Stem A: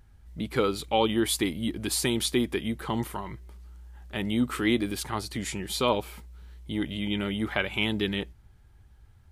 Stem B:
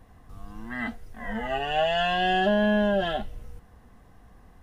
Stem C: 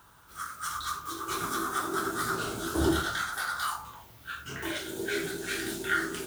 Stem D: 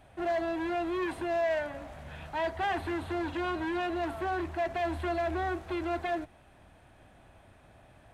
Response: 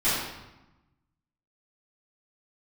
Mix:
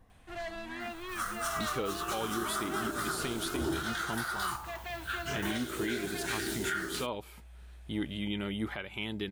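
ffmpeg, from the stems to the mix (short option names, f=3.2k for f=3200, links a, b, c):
-filter_complex "[0:a]adelay=1200,volume=-4dB[a];[1:a]acompressor=threshold=-38dB:ratio=2,volume=-8dB[b];[2:a]adelay=800,volume=2dB[c];[3:a]tiltshelf=f=1.3k:g=-9,adelay=100,volume=-6dB[d];[a][b][c][d]amix=inputs=4:normalize=0,alimiter=limit=-23dB:level=0:latency=1:release=495"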